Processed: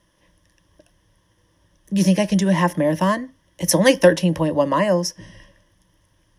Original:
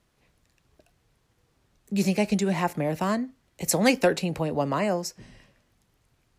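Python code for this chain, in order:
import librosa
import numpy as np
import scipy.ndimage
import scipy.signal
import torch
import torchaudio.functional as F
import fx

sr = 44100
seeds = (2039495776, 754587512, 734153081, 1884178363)

y = fx.ripple_eq(x, sr, per_octave=1.2, db=13)
y = y * librosa.db_to_amplitude(4.5)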